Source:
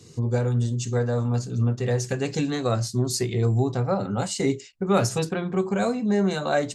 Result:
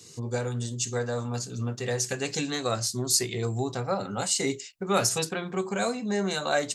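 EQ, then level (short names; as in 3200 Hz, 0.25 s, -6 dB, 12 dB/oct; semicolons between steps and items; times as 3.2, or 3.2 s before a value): tilt +2.5 dB/oct; -1.5 dB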